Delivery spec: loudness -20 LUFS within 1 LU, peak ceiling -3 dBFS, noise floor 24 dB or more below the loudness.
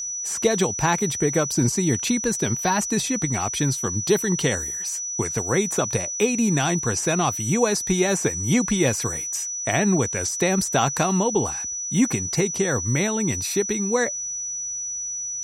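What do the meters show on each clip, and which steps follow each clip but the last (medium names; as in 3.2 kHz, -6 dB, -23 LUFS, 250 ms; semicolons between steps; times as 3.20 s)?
tick rate 18 per s; steady tone 5.9 kHz; tone level -27 dBFS; loudness -22.5 LUFS; peak level -6.5 dBFS; loudness target -20.0 LUFS
-> de-click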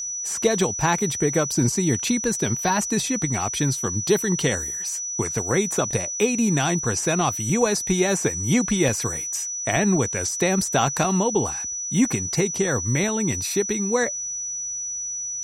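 tick rate 0.19 per s; steady tone 5.9 kHz; tone level -27 dBFS
-> band-stop 5.9 kHz, Q 30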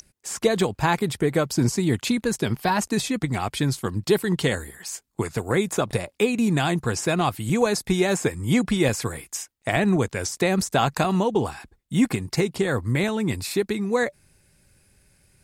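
steady tone not found; loudness -24.0 LUFS; peak level -7.5 dBFS; loudness target -20.0 LUFS
-> trim +4 dB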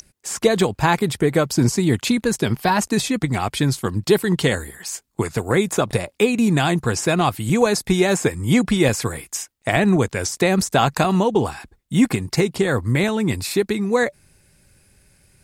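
loudness -20.0 LUFS; peak level -3.5 dBFS; noise floor -64 dBFS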